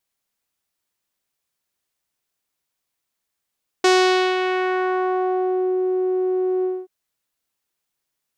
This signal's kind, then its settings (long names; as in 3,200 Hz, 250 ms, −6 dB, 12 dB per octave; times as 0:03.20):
subtractive voice saw F#4 12 dB per octave, low-pass 410 Hz, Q 1.3, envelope 4 octaves, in 1.92 s, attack 5 ms, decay 0.51 s, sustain −7.5 dB, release 0.23 s, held 2.80 s